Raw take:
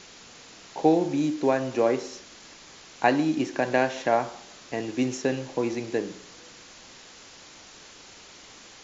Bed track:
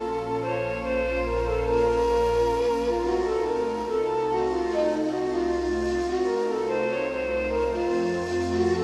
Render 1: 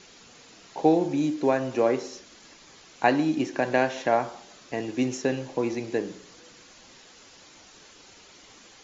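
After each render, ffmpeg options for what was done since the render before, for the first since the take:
ffmpeg -i in.wav -af "afftdn=noise_reduction=6:noise_floor=-49" out.wav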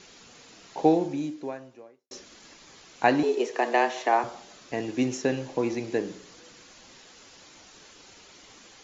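ffmpeg -i in.wav -filter_complex "[0:a]asettb=1/sr,asplit=3[link_01][link_02][link_03];[link_01]atrim=end=3.234[link_04];[link_02]atrim=start=3.23:end=4.24,asetpts=PTS-STARTPTS,afade=type=in:duration=0.004:curve=qsin,afade=type=out:start_time=1.006:duration=0.004:curve=qsin,afreqshift=110[link_05];[link_03]atrim=start=4.236[link_06];[link_04][link_05]acrossfade=duration=0.004:curve1=hsin:curve2=qsin[link_07];[link_07][link_06]acrossfade=duration=0.004:curve1=qsin:curve2=hsin,asplit=2[link_08][link_09];[link_08]atrim=end=2.11,asetpts=PTS-STARTPTS,afade=type=out:start_time=0.87:duration=1.24:curve=qua[link_10];[link_09]atrim=start=2.11,asetpts=PTS-STARTPTS,afade=type=in:duration=0.004:curve=hsin[link_11];[link_10][link_11]concat=n=2:v=0:a=1" out.wav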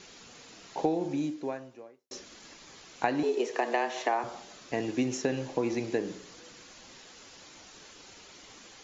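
ffmpeg -i in.wav -af "acompressor=threshold=-24dB:ratio=6" out.wav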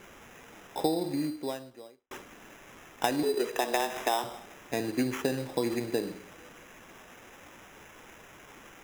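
ffmpeg -i in.wav -af "acrusher=samples=10:mix=1:aa=0.000001" out.wav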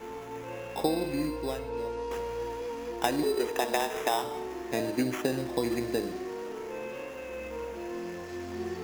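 ffmpeg -i in.wav -i bed.wav -filter_complex "[1:a]volume=-12.5dB[link_01];[0:a][link_01]amix=inputs=2:normalize=0" out.wav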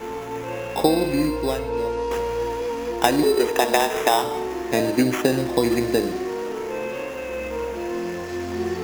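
ffmpeg -i in.wav -af "volume=9.5dB" out.wav

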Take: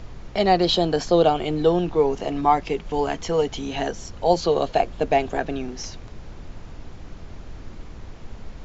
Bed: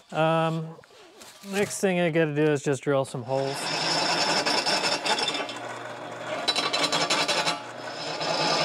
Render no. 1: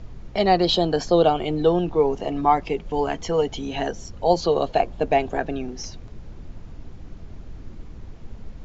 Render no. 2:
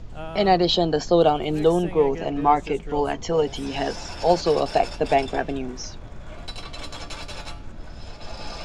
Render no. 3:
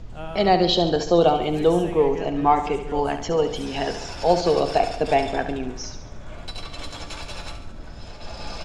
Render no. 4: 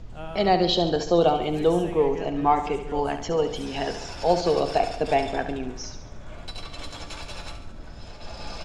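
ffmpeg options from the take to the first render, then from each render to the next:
ffmpeg -i in.wav -af "afftdn=noise_reduction=7:noise_floor=-40" out.wav
ffmpeg -i in.wav -i bed.wav -filter_complex "[1:a]volume=-13dB[link_01];[0:a][link_01]amix=inputs=2:normalize=0" out.wav
ffmpeg -i in.wav -af "aecho=1:1:70|140|210|280|350|420:0.316|0.174|0.0957|0.0526|0.0289|0.0159" out.wav
ffmpeg -i in.wav -af "volume=-2.5dB" out.wav

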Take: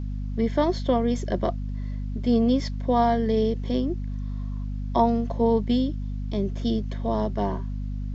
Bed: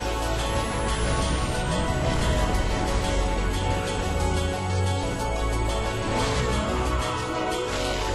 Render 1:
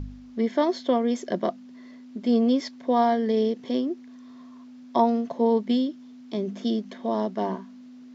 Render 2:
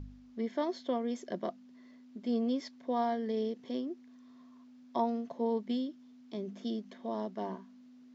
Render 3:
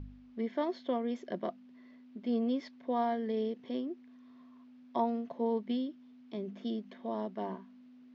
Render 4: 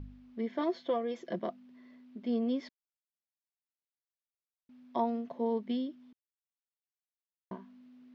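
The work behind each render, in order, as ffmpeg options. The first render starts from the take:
ffmpeg -i in.wav -af "bandreject=frequency=50:width_type=h:width=4,bandreject=frequency=100:width_type=h:width=4,bandreject=frequency=150:width_type=h:width=4,bandreject=frequency=200:width_type=h:width=4" out.wav
ffmpeg -i in.wav -af "volume=-10.5dB" out.wav
ffmpeg -i in.wav -af "lowpass=3600,equalizer=frequency=2600:width_type=o:width=0.77:gain=2.5" out.wav
ffmpeg -i in.wav -filter_complex "[0:a]asettb=1/sr,asplit=3[link_01][link_02][link_03];[link_01]atrim=end=0.584[link_04];[link_02]atrim=start=0.58:end=1.39,asetpts=PTS-STARTPTS,afade=type=in:duration=0.004:curve=qsin,afade=type=out:start_time=0.806:duration=0.004:curve=qsin,aecho=1:1:6:0.65,atrim=end_sample=35721[link_05];[link_03]atrim=start=1.386[link_06];[link_04][link_05]acrossfade=duration=0.004:curve1=hsin:curve2=qsin[link_07];[link_07][link_06]acrossfade=duration=0.004:curve1=qsin:curve2=hsin,asplit=5[link_08][link_09][link_10][link_11][link_12];[link_08]atrim=end=2.69,asetpts=PTS-STARTPTS,afade=type=out:start_time=2.686:duration=0.004:curve=hsin[link_13];[link_09]atrim=start=2.69:end=4.69,asetpts=PTS-STARTPTS,volume=0[link_14];[link_10]atrim=start=4.69:end=6.13,asetpts=PTS-STARTPTS,afade=type=in:duration=0.004:curve=hsin,afade=type=out:start_time=1.436:duration=0.004:curve=hsin[link_15];[link_11]atrim=start=6.13:end=7.51,asetpts=PTS-STARTPTS,volume=0[link_16];[link_12]atrim=start=7.51,asetpts=PTS-STARTPTS,afade=type=in:duration=0.004:curve=hsin[link_17];[link_13][link_14][link_15][link_16][link_17]concat=n=5:v=0:a=1" out.wav

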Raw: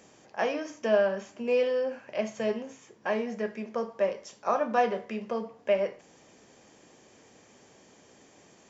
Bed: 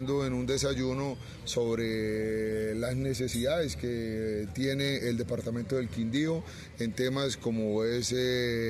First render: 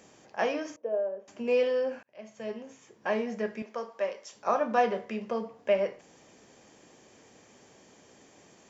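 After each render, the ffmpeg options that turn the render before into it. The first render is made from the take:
ffmpeg -i in.wav -filter_complex "[0:a]asettb=1/sr,asplit=3[link_01][link_02][link_03];[link_01]atrim=end=0.764[link_04];[link_02]atrim=start=0.76:end=1.28,asetpts=PTS-STARTPTS,afade=type=in:duration=0.004:curve=qsin,afade=type=out:start_time=0.516:duration=0.004:curve=qsin,bandpass=frequency=500:width_type=q:width=4.3[link_05];[link_03]atrim=start=1.276[link_06];[link_04][link_05]acrossfade=duration=0.004:curve1=hsin:curve2=qsin[link_07];[link_07][link_06]acrossfade=duration=0.004:curve1=qsin:curve2=hsin,asettb=1/sr,asplit=3[link_08][link_09][link_10];[link_08]atrim=end=3.624[link_11];[link_09]atrim=start=3.62:end=4.35,asetpts=PTS-STARTPTS,afade=type=in:duration=0.004:curve=qsin,afade=type=out:start_time=0.726:duration=0.004:curve=qsin,highpass=frequency=710:poles=1[link_12];[link_10]atrim=start=4.346[link_13];[link_11][link_12]acrossfade=duration=0.004:curve1=hsin:curve2=qsin[link_14];[link_14][link_13]acrossfade=duration=0.004:curve1=qsin:curve2=hsin,asplit=2[link_15][link_16];[link_15]atrim=end=2.03,asetpts=PTS-STARTPTS,afade=type=out:start_time=2.026:duration=0.004:curve=hsin[link_17];[link_16]atrim=start=2.03,asetpts=PTS-STARTPTS,afade=type=in:duration=1.09[link_18];[link_17][link_18]concat=n=2:v=0:a=1" out.wav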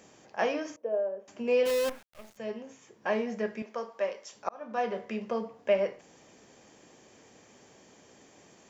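ffmpeg -i in.wav -filter_complex "[0:a]asplit=3[link_01][link_02][link_03];[link_01]afade=type=out:start_time=1.65:duration=0.02[link_04];[link_02]acrusher=bits=6:dc=4:mix=0:aa=0.000001,afade=type=in:start_time=1.65:duration=0.02,afade=type=out:start_time=2.36:duration=0.02[link_05];[link_03]afade=type=in:start_time=2.36:duration=0.02[link_06];[link_04][link_05][link_06]amix=inputs=3:normalize=0,asplit=2[link_07][link_08];[link_07]atrim=end=4.49,asetpts=PTS-STARTPTS,afade=type=out:start_time=4.486:duration=0.004:curve=hsin[link_09];[link_08]atrim=start=4.49,asetpts=PTS-STARTPTS,afade=type=in:duration=0.62[link_10];[link_09][link_10]concat=n=2:v=0:a=1" out.wav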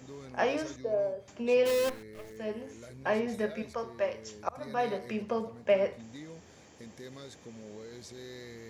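ffmpeg -i in.wav -i bed.wav -filter_complex "[1:a]volume=-17dB[link_01];[0:a][link_01]amix=inputs=2:normalize=0" out.wav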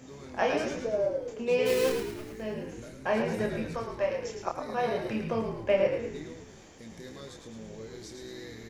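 ffmpeg -i in.wav -filter_complex "[0:a]asplit=2[link_01][link_02];[link_02]adelay=27,volume=-4.5dB[link_03];[link_01][link_03]amix=inputs=2:normalize=0,asplit=2[link_04][link_05];[link_05]asplit=7[link_06][link_07][link_08][link_09][link_10][link_11][link_12];[link_06]adelay=108,afreqshift=-55,volume=-6dB[link_13];[link_07]adelay=216,afreqshift=-110,volume=-11.5dB[link_14];[link_08]adelay=324,afreqshift=-165,volume=-17dB[link_15];[link_09]adelay=432,afreqshift=-220,volume=-22.5dB[link_16];[link_10]adelay=540,afreqshift=-275,volume=-28.1dB[link_17];[link_11]adelay=648,afreqshift=-330,volume=-33.6dB[link_18];[link_12]adelay=756,afreqshift=-385,volume=-39.1dB[link_19];[link_13][link_14][link_15][link_16][link_17][link_18][link_19]amix=inputs=7:normalize=0[link_20];[link_04][link_20]amix=inputs=2:normalize=0" out.wav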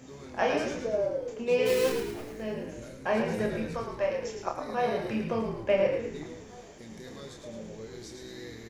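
ffmpeg -i in.wav -filter_complex "[0:a]asplit=2[link_01][link_02];[link_02]adelay=41,volume=-12dB[link_03];[link_01][link_03]amix=inputs=2:normalize=0,asplit=2[link_04][link_05];[link_05]adelay=1749,volume=-20dB,highshelf=frequency=4000:gain=-39.4[link_06];[link_04][link_06]amix=inputs=2:normalize=0" out.wav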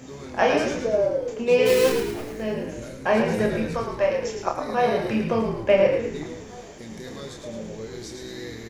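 ffmpeg -i in.wav -af "volume=7dB" out.wav

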